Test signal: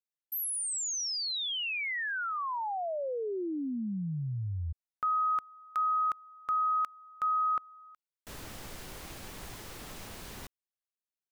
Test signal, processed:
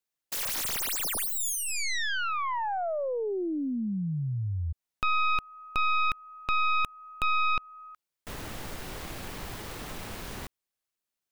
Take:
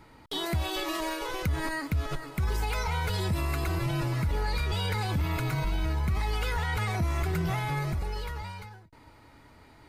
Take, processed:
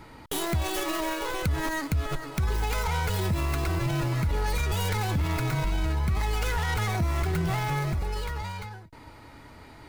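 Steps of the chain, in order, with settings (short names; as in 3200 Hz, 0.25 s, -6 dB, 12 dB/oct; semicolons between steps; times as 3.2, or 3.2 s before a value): tracing distortion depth 0.46 ms; in parallel at +1 dB: compressor, threshold -40 dBFS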